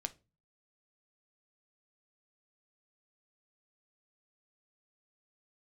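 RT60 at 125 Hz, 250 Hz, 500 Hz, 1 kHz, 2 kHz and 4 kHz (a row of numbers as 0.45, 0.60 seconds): 0.60, 0.50, 0.35, 0.25, 0.25, 0.25 seconds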